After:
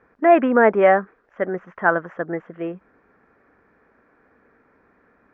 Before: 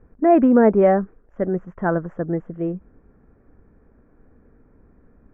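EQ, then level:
resonant band-pass 2,400 Hz, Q 0.54
high-frequency loss of the air 140 metres
high-shelf EQ 2,200 Hz +10.5 dB
+8.5 dB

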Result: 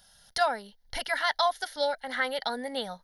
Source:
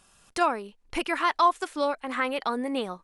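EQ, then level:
high-shelf EQ 3,200 Hz +11 dB
phaser with its sweep stopped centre 1,700 Hz, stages 8
0.0 dB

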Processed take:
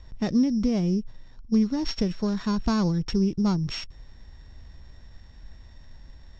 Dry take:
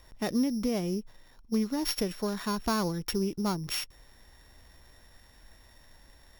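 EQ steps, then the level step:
Butterworth low-pass 7,500 Hz 36 dB per octave
high-frequency loss of the air 120 metres
bass and treble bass +12 dB, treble +8 dB
0.0 dB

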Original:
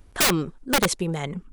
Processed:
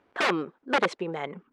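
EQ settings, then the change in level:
band-pass filter 350–2,300 Hz
0.0 dB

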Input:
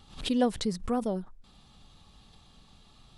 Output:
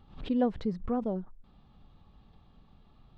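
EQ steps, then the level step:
head-to-tape spacing loss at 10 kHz 40 dB
0.0 dB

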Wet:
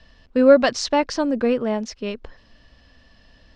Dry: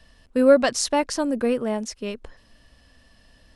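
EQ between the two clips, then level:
low-pass filter 5,600 Hz 24 dB per octave
+2.5 dB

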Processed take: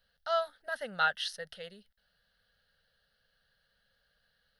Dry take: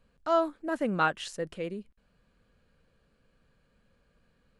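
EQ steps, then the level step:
tilt shelving filter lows −10 dB
phaser with its sweep stopped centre 1,600 Hz, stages 8
−2.0 dB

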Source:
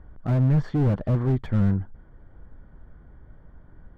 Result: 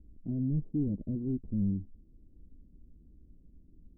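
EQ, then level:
transistor ladder low-pass 350 Hz, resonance 40%
high-frequency loss of the air 410 metres
parametric band 120 Hz −9.5 dB 0.54 octaves
0.0 dB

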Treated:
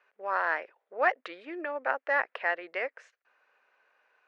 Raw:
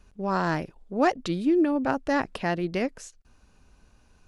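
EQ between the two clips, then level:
four-pole ladder high-pass 430 Hz, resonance 50%
low-pass with resonance 1,900 Hz, resonance Q 2.4
tilt shelving filter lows −8.5 dB, about 700 Hz
0.0 dB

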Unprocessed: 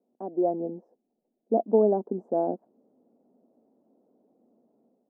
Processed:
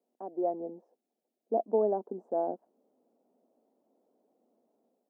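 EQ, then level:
high-pass filter 760 Hz 6 dB per octave
0.0 dB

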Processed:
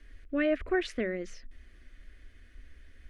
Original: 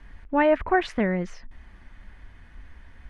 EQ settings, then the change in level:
high-shelf EQ 5,200 Hz +5.5 dB
mains-hum notches 50/100/150/200 Hz
phaser with its sweep stopped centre 370 Hz, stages 4
−4.0 dB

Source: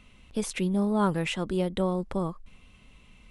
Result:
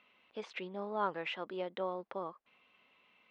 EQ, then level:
band-pass filter 540–3,700 Hz
high-frequency loss of the air 140 metres
−4.0 dB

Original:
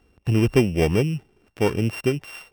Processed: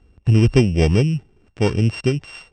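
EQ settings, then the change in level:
dynamic equaliser 4,600 Hz, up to +7 dB, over −45 dBFS, Q 1
linear-phase brick-wall low-pass 8,500 Hz
low-shelf EQ 180 Hz +11.5 dB
−1.0 dB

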